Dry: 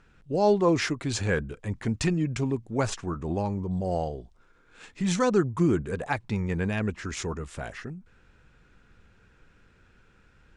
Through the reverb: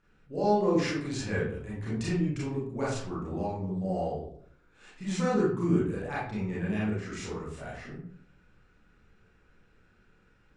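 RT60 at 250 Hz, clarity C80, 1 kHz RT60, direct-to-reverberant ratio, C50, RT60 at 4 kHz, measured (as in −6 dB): 0.75 s, 6.0 dB, 0.55 s, −8.5 dB, 1.0 dB, 0.35 s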